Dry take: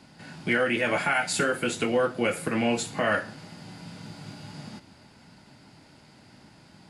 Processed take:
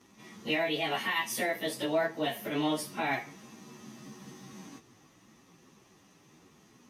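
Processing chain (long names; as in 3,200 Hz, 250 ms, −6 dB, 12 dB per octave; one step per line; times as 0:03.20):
phase-vocoder pitch shift without resampling +4.5 semitones
level −3 dB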